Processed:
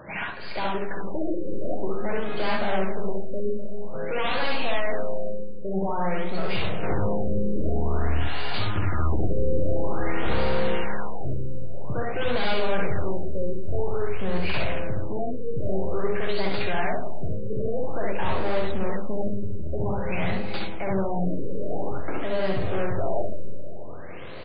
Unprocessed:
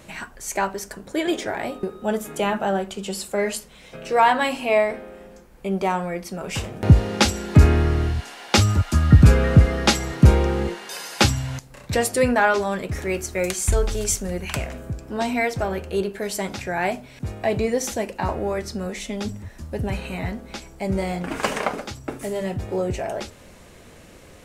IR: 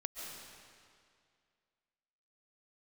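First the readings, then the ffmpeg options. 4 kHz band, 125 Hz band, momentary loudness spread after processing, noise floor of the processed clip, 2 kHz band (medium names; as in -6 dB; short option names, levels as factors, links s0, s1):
-7.0 dB, -10.0 dB, 7 LU, -26 dBFS, -5.5 dB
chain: -filter_complex "[0:a]highpass=120,equalizer=f=230:w=2.3:g=-7.5,bandreject=f=50:t=h:w=6,bandreject=f=100:t=h:w=6,bandreject=f=150:t=h:w=6,bandreject=f=200:t=h:w=6,bandreject=f=250:t=h:w=6,bandreject=f=300:t=h:w=6,bandreject=f=350:t=h:w=6,bandreject=f=400:t=h:w=6,bandreject=f=450:t=h:w=6,aresample=16000,aeval=exprs='0.126*(abs(mod(val(0)/0.126+3,4)-2)-1)':c=same,aresample=44100,aeval=exprs='(tanh(56.2*val(0)+0.3)-tanh(0.3))/56.2':c=same,aecho=1:1:63|73:0.631|0.562,asplit=2[s0][s1];[1:a]atrim=start_sample=2205,lowshelf=f=260:g=7.5[s2];[s1][s2]afir=irnorm=-1:irlink=0,volume=0.447[s3];[s0][s3]amix=inputs=2:normalize=0,afftfilt=real='re*lt(b*sr/1024,570*pow(5000/570,0.5+0.5*sin(2*PI*0.5*pts/sr)))':imag='im*lt(b*sr/1024,570*pow(5000/570,0.5+0.5*sin(2*PI*0.5*pts/sr)))':win_size=1024:overlap=0.75,volume=1.68"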